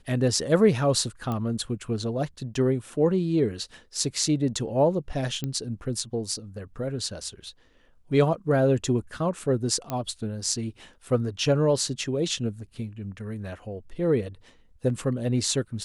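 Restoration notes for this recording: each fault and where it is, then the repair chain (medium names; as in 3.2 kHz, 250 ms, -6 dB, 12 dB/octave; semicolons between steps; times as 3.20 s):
1.32 s: pop -18 dBFS
5.44 s: pop -17 dBFS
9.90 s: pop -15 dBFS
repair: de-click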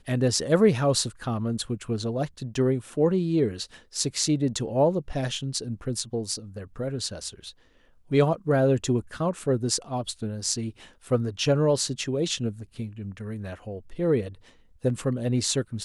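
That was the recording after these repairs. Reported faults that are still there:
nothing left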